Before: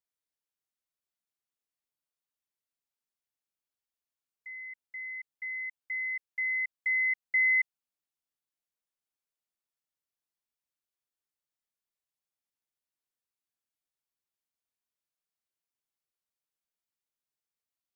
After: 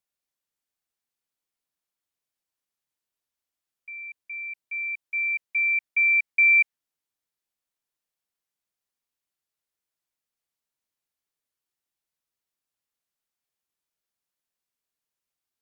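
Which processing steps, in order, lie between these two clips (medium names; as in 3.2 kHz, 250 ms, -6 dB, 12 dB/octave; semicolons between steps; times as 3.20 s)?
wide varispeed 1.15×; dynamic bell 2 kHz, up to +5 dB, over -40 dBFS; trim +4.5 dB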